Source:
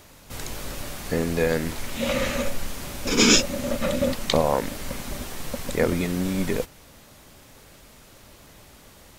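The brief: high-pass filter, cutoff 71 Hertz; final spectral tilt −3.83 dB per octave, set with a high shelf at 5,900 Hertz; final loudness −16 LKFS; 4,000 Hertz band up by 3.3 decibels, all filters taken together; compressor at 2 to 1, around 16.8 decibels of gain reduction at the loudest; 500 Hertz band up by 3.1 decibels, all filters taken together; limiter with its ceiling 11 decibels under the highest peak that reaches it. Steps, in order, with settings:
high-pass filter 71 Hz
parametric band 500 Hz +3.5 dB
parametric band 4,000 Hz +6 dB
high-shelf EQ 5,900 Hz −4 dB
downward compressor 2 to 1, threshold −44 dBFS
level +25 dB
brickwall limiter −3.5 dBFS

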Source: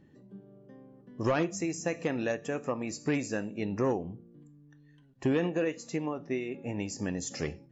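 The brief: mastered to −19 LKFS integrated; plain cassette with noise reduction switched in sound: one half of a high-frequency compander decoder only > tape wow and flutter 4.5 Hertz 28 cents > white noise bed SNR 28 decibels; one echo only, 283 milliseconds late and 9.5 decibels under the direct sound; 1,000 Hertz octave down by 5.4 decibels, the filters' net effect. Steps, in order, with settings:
parametric band 1,000 Hz −7.5 dB
single-tap delay 283 ms −9.5 dB
one half of a high-frequency compander decoder only
tape wow and flutter 4.5 Hz 28 cents
white noise bed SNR 28 dB
level +14 dB

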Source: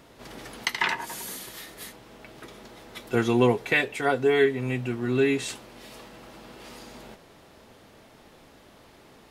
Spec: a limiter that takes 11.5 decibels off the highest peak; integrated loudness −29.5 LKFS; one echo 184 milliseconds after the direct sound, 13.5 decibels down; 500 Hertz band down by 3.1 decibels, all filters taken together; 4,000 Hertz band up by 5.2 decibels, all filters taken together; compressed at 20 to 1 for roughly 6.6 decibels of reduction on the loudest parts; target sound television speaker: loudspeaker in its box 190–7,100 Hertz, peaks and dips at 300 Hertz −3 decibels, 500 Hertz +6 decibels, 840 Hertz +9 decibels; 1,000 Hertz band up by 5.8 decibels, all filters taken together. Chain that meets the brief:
parametric band 500 Hz −8 dB
parametric band 1,000 Hz +4 dB
parametric band 4,000 Hz +6.5 dB
downward compressor 20 to 1, threshold −25 dBFS
brickwall limiter −23 dBFS
loudspeaker in its box 190–7,100 Hz, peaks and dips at 300 Hz −3 dB, 500 Hz +6 dB, 840 Hz +9 dB
single-tap delay 184 ms −13.5 dB
level +5.5 dB

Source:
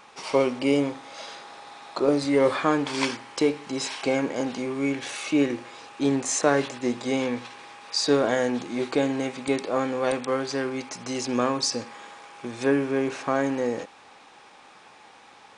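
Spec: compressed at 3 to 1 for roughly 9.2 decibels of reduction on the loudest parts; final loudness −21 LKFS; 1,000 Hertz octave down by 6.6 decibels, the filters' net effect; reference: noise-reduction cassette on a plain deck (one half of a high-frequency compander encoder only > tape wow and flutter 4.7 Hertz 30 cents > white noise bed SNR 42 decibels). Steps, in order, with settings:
parametric band 1,000 Hz −9 dB
downward compressor 3 to 1, threshold −30 dBFS
one half of a high-frequency compander encoder only
tape wow and flutter 4.7 Hz 30 cents
white noise bed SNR 42 dB
level +12.5 dB

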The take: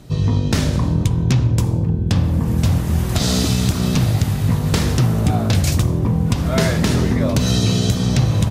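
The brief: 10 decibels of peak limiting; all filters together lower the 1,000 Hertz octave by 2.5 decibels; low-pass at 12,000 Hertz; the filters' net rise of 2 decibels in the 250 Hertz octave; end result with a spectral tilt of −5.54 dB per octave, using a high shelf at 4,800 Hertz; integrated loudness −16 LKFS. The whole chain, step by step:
low-pass filter 12,000 Hz
parametric band 250 Hz +3 dB
parametric band 1,000 Hz −4 dB
high-shelf EQ 4,800 Hz +7.5 dB
level +5 dB
brickwall limiter −7.5 dBFS

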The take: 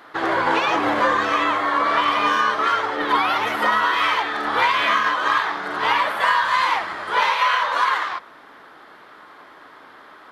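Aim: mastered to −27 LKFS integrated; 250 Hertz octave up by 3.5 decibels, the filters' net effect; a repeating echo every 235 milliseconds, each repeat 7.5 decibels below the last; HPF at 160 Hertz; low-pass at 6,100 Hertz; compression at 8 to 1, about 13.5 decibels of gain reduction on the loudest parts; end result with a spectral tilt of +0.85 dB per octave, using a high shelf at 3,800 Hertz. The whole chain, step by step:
high-pass filter 160 Hz
low-pass filter 6,100 Hz
parametric band 250 Hz +5 dB
high-shelf EQ 3,800 Hz +7 dB
downward compressor 8 to 1, threshold −28 dBFS
repeating echo 235 ms, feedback 42%, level −7.5 dB
level +2.5 dB

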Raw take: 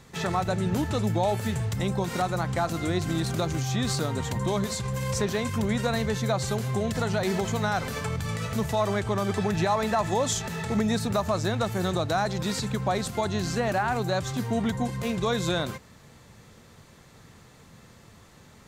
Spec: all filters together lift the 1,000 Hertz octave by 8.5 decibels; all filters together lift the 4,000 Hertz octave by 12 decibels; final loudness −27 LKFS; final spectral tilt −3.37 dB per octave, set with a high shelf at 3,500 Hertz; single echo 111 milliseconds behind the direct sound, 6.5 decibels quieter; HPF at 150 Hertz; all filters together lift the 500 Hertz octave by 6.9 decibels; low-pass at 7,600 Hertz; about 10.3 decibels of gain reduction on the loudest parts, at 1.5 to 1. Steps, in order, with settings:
high-pass filter 150 Hz
low-pass filter 7,600 Hz
parametric band 500 Hz +6 dB
parametric band 1,000 Hz +8 dB
high-shelf EQ 3,500 Hz +7 dB
parametric band 4,000 Hz +9 dB
downward compressor 1.5 to 1, threshold −43 dBFS
single-tap delay 111 ms −6.5 dB
level +2.5 dB

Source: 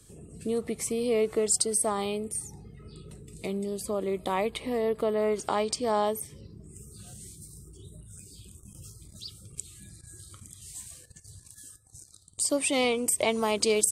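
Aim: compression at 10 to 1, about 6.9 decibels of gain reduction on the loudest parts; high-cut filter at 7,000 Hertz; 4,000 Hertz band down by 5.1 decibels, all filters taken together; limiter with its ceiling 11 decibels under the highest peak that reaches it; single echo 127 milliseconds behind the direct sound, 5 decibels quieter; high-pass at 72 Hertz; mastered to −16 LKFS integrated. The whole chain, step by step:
high-pass filter 72 Hz
low-pass filter 7,000 Hz
parametric band 4,000 Hz −6.5 dB
downward compressor 10 to 1, threshold −28 dBFS
brickwall limiter −27 dBFS
single-tap delay 127 ms −5 dB
level +20.5 dB

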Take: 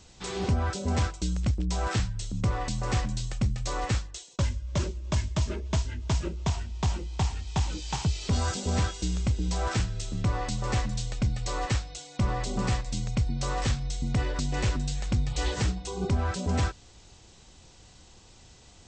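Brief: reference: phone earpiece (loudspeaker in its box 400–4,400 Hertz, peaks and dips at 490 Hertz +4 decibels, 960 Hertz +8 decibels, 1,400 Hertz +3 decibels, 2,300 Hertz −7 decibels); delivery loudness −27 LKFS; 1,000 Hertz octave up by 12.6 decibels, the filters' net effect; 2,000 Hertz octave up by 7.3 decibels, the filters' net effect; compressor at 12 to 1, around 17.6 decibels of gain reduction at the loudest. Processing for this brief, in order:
parametric band 1,000 Hz +7.5 dB
parametric band 2,000 Hz +6.5 dB
downward compressor 12 to 1, threshold −39 dBFS
loudspeaker in its box 400–4,400 Hz, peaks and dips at 490 Hz +4 dB, 960 Hz +8 dB, 1,400 Hz +3 dB, 2,300 Hz −7 dB
level +17.5 dB

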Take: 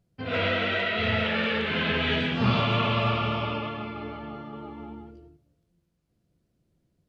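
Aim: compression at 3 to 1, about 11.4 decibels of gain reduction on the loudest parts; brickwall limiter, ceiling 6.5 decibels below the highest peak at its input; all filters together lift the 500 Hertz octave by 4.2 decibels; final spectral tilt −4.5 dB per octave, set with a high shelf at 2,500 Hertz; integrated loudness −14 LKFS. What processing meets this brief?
parametric band 500 Hz +5.5 dB
high-shelf EQ 2,500 Hz −7.5 dB
downward compressor 3 to 1, threshold −34 dBFS
level +23.5 dB
brickwall limiter −5 dBFS

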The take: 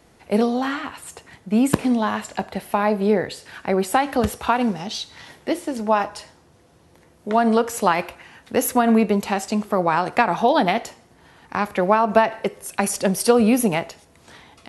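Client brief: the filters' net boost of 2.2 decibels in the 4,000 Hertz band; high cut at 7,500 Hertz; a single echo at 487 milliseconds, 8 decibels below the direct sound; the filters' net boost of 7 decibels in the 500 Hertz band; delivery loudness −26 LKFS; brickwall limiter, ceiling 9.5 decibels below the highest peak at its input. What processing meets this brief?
low-pass filter 7,500 Hz
parametric band 500 Hz +8.5 dB
parametric band 4,000 Hz +3 dB
brickwall limiter −6 dBFS
single-tap delay 487 ms −8 dB
level −7 dB

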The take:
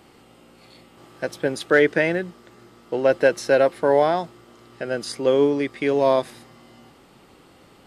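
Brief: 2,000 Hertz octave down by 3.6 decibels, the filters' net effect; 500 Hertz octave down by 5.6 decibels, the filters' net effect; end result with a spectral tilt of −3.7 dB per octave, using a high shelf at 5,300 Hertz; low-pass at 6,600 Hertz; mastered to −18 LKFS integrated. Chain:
low-pass filter 6,600 Hz
parametric band 500 Hz −6.5 dB
parametric band 2,000 Hz −5 dB
high-shelf EQ 5,300 Hz +6 dB
level +7.5 dB

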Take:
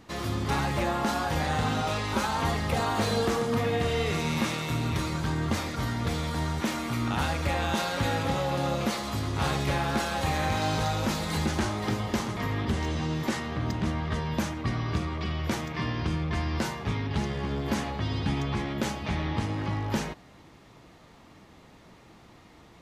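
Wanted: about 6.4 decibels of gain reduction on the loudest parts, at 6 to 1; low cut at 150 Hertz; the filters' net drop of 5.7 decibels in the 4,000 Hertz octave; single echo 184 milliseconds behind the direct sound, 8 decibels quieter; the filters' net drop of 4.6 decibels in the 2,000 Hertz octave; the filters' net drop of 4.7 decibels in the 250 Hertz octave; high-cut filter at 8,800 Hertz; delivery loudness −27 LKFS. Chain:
high-pass filter 150 Hz
low-pass filter 8,800 Hz
parametric band 250 Hz −5 dB
parametric band 2,000 Hz −4.5 dB
parametric band 4,000 Hz −5.5 dB
downward compressor 6 to 1, threshold −33 dBFS
single-tap delay 184 ms −8 dB
level +9.5 dB

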